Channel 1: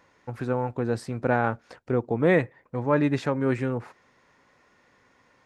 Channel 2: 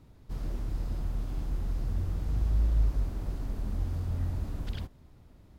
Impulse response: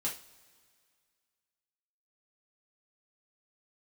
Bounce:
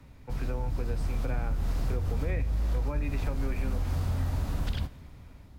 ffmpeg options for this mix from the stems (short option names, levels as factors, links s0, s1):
-filter_complex "[0:a]equalizer=f=2400:t=o:w=0.25:g=11.5,volume=0.316,asplit=2[s0][s1];[s1]volume=0.422[s2];[1:a]dynaudnorm=f=390:g=7:m=2.66,equalizer=f=380:w=1.5:g=-4,acompressor=threshold=0.0891:ratio=6,volume=1.33,asplit=2[s3][s4];[s4]volume=0.266[s5];[2:a]atrim=start_sample=2205[s6];[s2][s5]amix=inputs=2:normalize=0[s7];[s7][s6]afir=irnorm=-1:irlink=0[s8];[s0][s3][s8]amix=inputs=3:normalize=0,acrossover=split=170|400[s9][s10][s11];[s9]acompressor=threshold=0.0447:ratio=4[s12];[s10]acompressor=threshold=0.00631:ratio=4[s13];[s11]acompressor=threshold=0.01:ratio=4[s14];[s12][s13][s14]amix=inputs=3:normalize=0"